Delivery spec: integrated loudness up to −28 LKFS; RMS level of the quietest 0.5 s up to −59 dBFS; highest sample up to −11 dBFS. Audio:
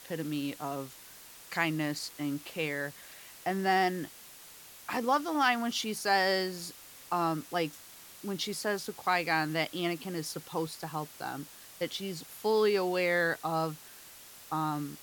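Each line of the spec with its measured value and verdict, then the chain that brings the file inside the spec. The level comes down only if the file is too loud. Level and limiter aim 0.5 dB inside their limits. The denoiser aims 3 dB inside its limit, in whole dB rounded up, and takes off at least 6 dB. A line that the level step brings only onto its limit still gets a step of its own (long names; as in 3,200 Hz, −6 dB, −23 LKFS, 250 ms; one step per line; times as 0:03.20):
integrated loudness −32.0 LKFS: in spec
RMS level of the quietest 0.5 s −51 dBFS: out of spec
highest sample −13.5 dBFS: in spec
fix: broadband denoise 11 dB, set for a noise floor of −51 dBFS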